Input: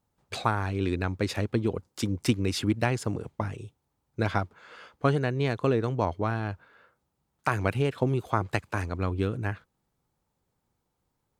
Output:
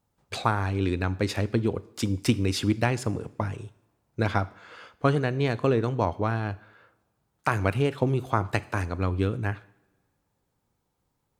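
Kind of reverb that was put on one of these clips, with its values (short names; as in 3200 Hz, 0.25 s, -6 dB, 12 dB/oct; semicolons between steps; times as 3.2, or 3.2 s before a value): two-slope reverb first 0.65 s, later 2.2 s, from -22 dB, DRR 15.5 dB; gain +1.5 dB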